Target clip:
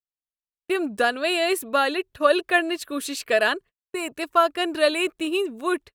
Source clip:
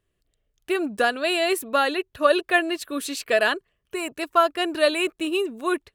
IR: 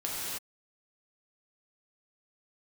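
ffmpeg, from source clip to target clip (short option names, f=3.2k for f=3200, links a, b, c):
-af "agate=range=-40dB:threshold=-41dB:ratio=16:detection=peak"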